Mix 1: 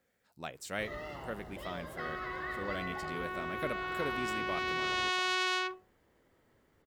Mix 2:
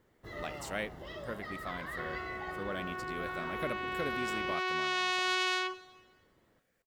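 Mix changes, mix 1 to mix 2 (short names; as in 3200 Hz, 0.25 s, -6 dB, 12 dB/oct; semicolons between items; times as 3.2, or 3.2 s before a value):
first sound: entry -0.55 s; reverb: on, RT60 1.4 s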